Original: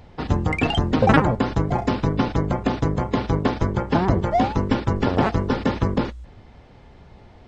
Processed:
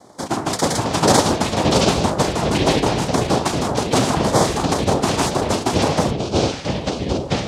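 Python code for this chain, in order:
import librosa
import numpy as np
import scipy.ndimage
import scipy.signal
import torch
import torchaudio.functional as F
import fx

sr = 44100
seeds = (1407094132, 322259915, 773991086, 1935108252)

y = fx.noise_vocoder(x, sr, seeds[0], bands=2)
y = fx.filter_lfo_notch(y, sr, shape='square', hz=1.9, low_hz=520.0, high_hz=2700.0, q=1.8)
y = fx.echo_pitch(y, sr, ms=197, semitones=-6, count=2, db_per_echo=-3.0)
y = y * 10.0 ** (2.0 / 20.0)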